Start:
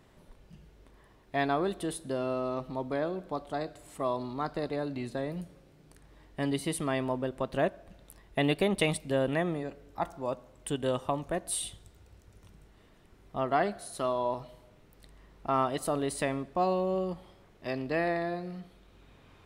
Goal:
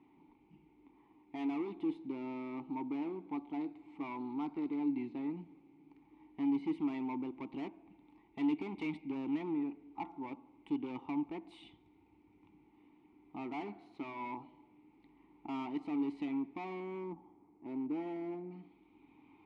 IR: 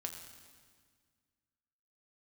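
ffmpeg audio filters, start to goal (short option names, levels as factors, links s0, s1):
-filter_complex "[0:a]asetnsamples=n=441:p=0,asendcmd='16.8 lowpass f 1100;18.51 lowpass f 3700',lowpass=3400,asoftclip=type=hard:threshold=0.0251,asplit=3[s0][s1][s2];[s0]bandpass=f=300:t=q:w=8,volume=1[s3];[s1]bandpass=f=870:t=q:w=8,volume=0.501[s4];[s2]bandpass=f=2240:t=q:w=8,volume=0.355[s5];[s3][s4][s5]amix=inputs=3:normalize=0,volume=2.51"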